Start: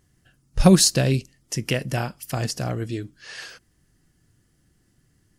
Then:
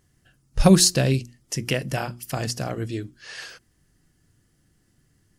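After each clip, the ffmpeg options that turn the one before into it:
-af "bandreject=f=60:t=h:w=6,bandreject=f=120:t=h:w=6,bandreject=f=180:t=h:w=6,bandreject=f=240:t=h:w=6,bandreject=f=300:t=h:w=6,bandreject=f=360:t=h:w=6"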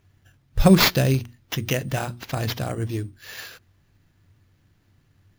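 -af "equalizer=f=95:w=5.4:g=14,acrusher=samples=5:mix=1:aa=0.000001"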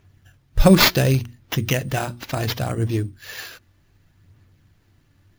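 -af "aphaser=in_gain=1:out_gain=1:delay=3.5:decay=0.28:speed=0.68:type=sinusoidal,volume=1.33"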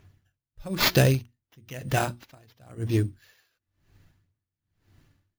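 -af "aeval=exprs='val(0)*pow(10,-34*(0.5-0.5*cos(2*PI*1*n/s))/20)':c=same"

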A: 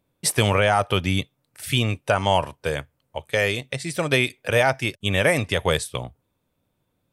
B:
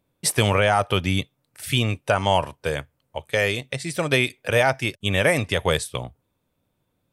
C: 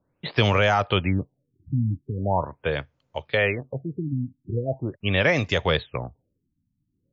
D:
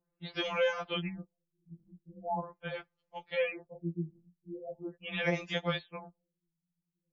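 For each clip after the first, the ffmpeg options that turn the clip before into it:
-af anull
-filter_complex "[0:a]acrossover=split=380|900|6200[s0][s1][s2][s3];[s1]alimiter=limit=0.1:level=0:latency=1[s4];[s0][s4][s2][s3]amix=inputs=4:normalize=0,afftfilt=real='re*lt(b*sr/1024,290*pow(7400/290,0.5+0.5*sin(2*PI*0.41*pts/sr)))':imag='im*lt(b*sr/1024,290*pow(7400/290,0.5+0.5*sin(2*PI*0.41*pts/sr)))':win_size=1024:overlap=0.75"
-af "afftfilt=real='re*2.83*eq(mod(b,8),0)':imag='im*2.83*eq(mod(b,8),0)':win_size=2048:overlap=0.75,volume=0.355"

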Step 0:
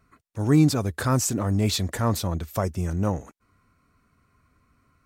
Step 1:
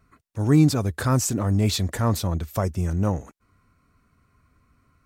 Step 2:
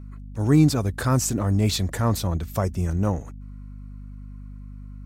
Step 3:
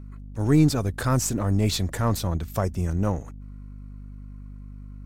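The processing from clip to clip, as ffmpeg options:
-af "lowshelf=f=140:g=4"
-af "aeval=exprs='val(0)+0.0141*(sin(2*PI*50*n/s)+sin(2*PI*2*50*n/s)/2+sin(2*PI*3*50*n/s)/3+sin(2*PI*4*50*n/s)/4+sin(2*PI*5*50*n/s)/5)':c=same"
-af "aeval=exprs='if(lt(val(0),0),0.708*val(0),val(0))':c=same"

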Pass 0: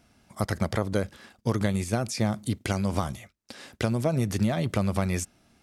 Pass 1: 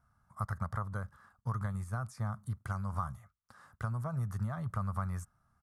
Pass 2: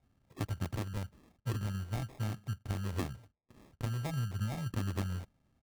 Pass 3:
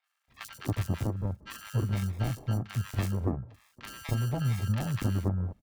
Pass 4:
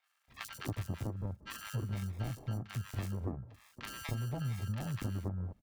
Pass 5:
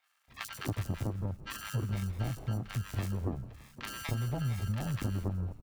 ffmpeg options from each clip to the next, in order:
-af "firequalizer=gain_entry='entry(130,0);entry(290,-21);entry(1200,6);entry(2400,-23);entry(9600,-10)':delay=0.05:min_phase=1,volume=0.501"
-af "acrusher=samples=30:mix=1:aa=0.000001"
-filter_complex "[0:a]acrossover=split=1100|4700[s0][s1][s2];[s2]adelay=40[s3];[s0]adelay=280[s4];[s4][s1][s3]amix=inputs=3:normalize=0,volume=2.11"
-af "acompressor=threshold=0.00562:ratio=2,volume=1.33"
-filter_complex "[0:a]asplit=6[s0][s1][s2][s3][s4][s5];[s1]adelay=166,afreqshift=-78,volume=0.126[s6];[s2]adelay=332,afreqshift=-156,volume=0.0708[s7];[s3]adelay=498,afreqshift=-234,volume=0.0394[s8];[s4]adelay=664,afreqshift=-312,volume=0.0221[s9];[s5]adelay=830,afreqshift=-390,volume=0.0124[s10];[s0][s6][s7][s8][s9][s10]amix=inputs=6:normalize=0,volume=1.5"

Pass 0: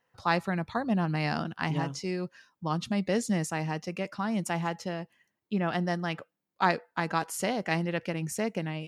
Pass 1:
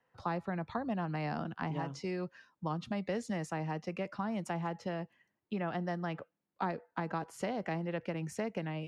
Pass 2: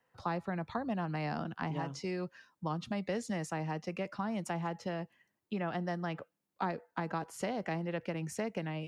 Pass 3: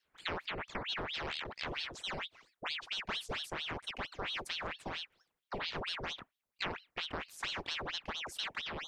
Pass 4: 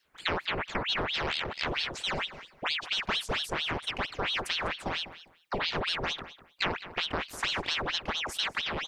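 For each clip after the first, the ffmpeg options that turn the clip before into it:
-filter_complex "[0:a]aemphasis=mode=reproduction:type=75kf,acrossover=split=110|480|990[s0][s1][s2][s3];[s0]acompressor=threshold=0.002:ratio=4[s4];[s1]acompressor=threshold=0.0126:ratio=4[s5];[s2]acompressor=threshold=0.0112:ratio=4[s6];[s3]acompressor=threshold=0.00631:ratio=4[s7];[s4][s5][s6][s7]amix=inputs=4:normalize=0"
-af "highshelf=f=4600:g=5"
-af "aeval=exprs='val(0)*sin(2*PI*1900*n/s+1900*0.9/4.4*sin(2*PI*4.4*n/s))':c=same,volume=0.891"
-filter_complex "[0:a]asplit=2[s0][s1];[s1]adelay=200,lowpass=f=3800:p=1,volume=0.2,asplit=2[s2][s3];[s3]adelay=200,lowpass=f=3800:p=1,volume=0.21[s4];[s0][s2][s4]amix=inputs=3:normalize=0,volume=2.51"

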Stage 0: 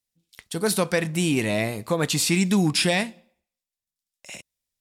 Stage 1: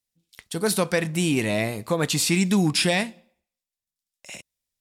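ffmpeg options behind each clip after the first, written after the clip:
-af anull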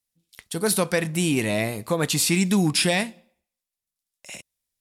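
-af "equalizer=f=11000:t=o:w=0.51:g=5"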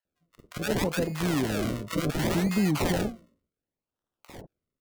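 -filter_complex "[0:a]acrusher=samples=37:mix=1:aa=0.000001:lfo=1:lforange=37:lforate=0.68,acrossover=split=840[s0][s1];[s0]adelay=50[s2];[s2][s1]amix=inputs=2:normalize=0,volume=0.631"

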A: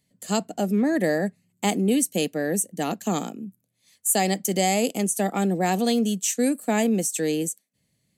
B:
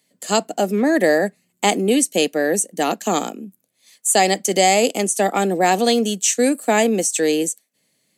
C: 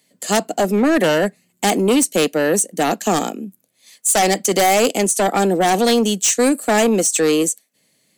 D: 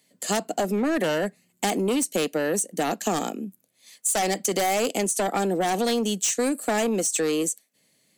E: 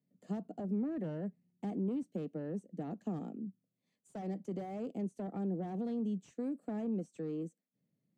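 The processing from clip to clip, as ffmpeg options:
-filter_complex "[0:a]highpass=320,acrossover=split=9400[s0][s1];[s1]acompressor=threshold=0.00398:ratio=4:attack=1:release=60[s2];[s0][s2]amix=inputs=2:normalize=0,volume=2.66"
-af "aeval=exprs='0.794*sin(PI/2*2.82*val(0)/0.794)':c=same,volume=0.376"
-af "acompressor=threshold=0.126:ratio=6,volume=0.668"
-af "bandpass=f=150:t=q:w=1.6:csg=0,volume=0.631"

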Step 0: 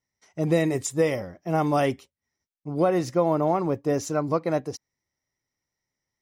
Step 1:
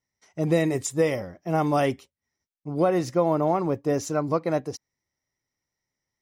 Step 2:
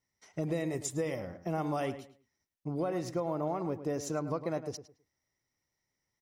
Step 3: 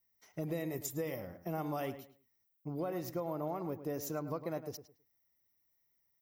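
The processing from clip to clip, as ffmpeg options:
-af anull
-filter_complex "[0:a]acompressor=threshold=0.02:ratio=3,asplit=2[s0][s1];[s1]adelay=107,lowpass=f=2800:p=1,volume=0.266,asplit=2[s2][s3];[s3]adelay=107,lowpass=f=2800:p=1,volume=0.25,asplit=2[s4][s5];[s5]adelay=107,lowpass=f=2800:p=1,volume=0.25[s6];[s2][s4][s6]amix=inputs=3:normalize=0[s7];[s0][s7]amix=inputs=2:normalize=0"
-af "aexciter=amount=12.9:drive=3.8:freq=12000,volume=0.596"

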